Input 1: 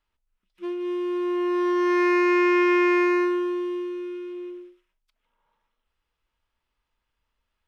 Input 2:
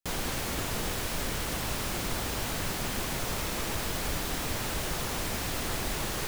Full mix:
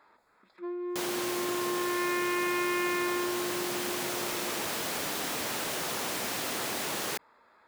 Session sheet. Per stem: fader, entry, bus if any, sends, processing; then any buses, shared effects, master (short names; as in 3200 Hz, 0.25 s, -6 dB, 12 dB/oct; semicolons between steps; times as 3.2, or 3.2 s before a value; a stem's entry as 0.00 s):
-6.5 dB, 0.00 s, no send, Wiener smoothing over 15 samples; low shelf 390 Hz -9 dB
-4.0 dB, 0.90 s, no send, dry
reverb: off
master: HPF 250 Hz 12 dB/oct; fast leveller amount 50%